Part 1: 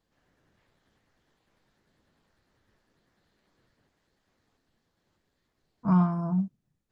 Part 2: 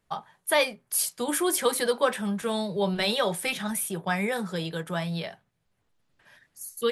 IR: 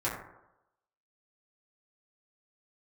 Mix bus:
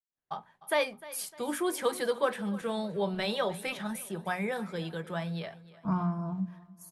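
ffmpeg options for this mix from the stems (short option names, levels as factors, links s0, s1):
-filter_complex "[0:a]agate=range=0.0224:threshold=0.00126:ratio=3:detection=peak,volume=0.631,asplit=2[s0][s1];[s1]volume=0.0891[s2];[1:a]highshelf=f=3600:g=-8.5,agate=range=0.0224:threshold=0.00251:ratio=3:detection=peak,adelay=200,volume=0.631,asplit=2[s3][s4];[s4]volume=0.119[s5];[s2][s5]amix=inputs=2:normalize=0,aecho=0:1:303|606|909|1212|1515|1818:1|0.41|0.168|0.0689|0.0283|0.0116[s6];[s0][s3][s6]amix=inputs=3:normalize=0,bandreject=f=60:t=h:w=6,bandreject=f=120:t=h:w=6,bandreject=f=180:t=h:w=6,bandreject=f=240:t=h:w=6"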